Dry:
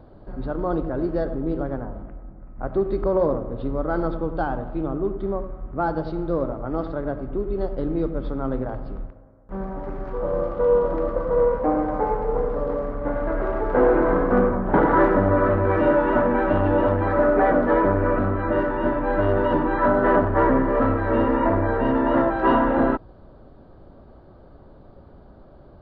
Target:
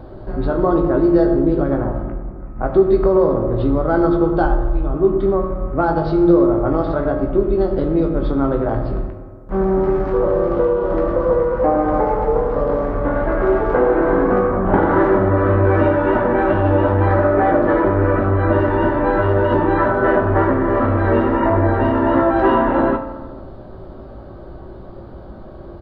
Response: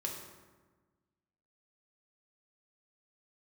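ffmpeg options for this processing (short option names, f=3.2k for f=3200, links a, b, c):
-filter_complex "[0:a]asplit=3[a][b][c];[a]afade=t=out:st=4.44:d=0.02[d];[b]asubboost=boost=11:cutoff=56,afade=t=in:st=4.44:d=0.02,afade=t=out:st=4.91:d=0.02[e];[c]afade=t=in:st=4.91:d=0.02[f];[d][e][f]amix=inputs=3:normalize=0,acompressor=threshold=-24dB:ratio=4,asplit=2[g][h];[h]adelay=18,volume=-7dB[i];[g][i]amix=inputs=2:normalize=0,asplit=2[j][k];[1:a]atrim=start_sample=2205[l];[k][l]afir=irnorm=-1:irlink=0,volume=0.5dB[m];[j][m]amix=inputs=2:normalize=0,volume=4.5dB"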